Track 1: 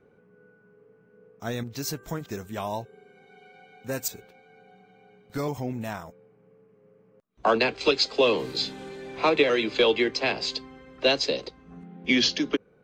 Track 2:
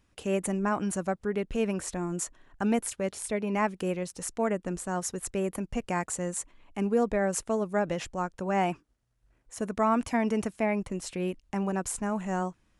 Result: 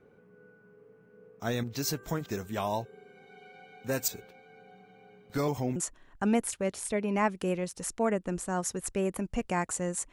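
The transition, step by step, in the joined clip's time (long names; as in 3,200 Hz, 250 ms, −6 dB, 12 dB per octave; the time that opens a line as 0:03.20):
track 1
0:05.76: continue with track 2 from 0:02.15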